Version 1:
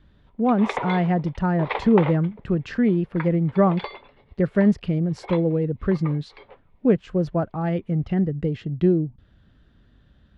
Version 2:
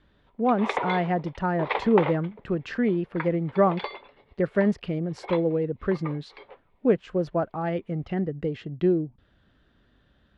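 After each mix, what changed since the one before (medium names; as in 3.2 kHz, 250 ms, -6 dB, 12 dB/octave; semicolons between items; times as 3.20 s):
speech: add tone controls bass -9 dB, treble -3 dB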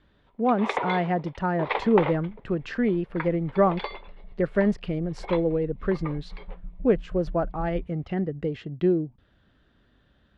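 second sound: unmuted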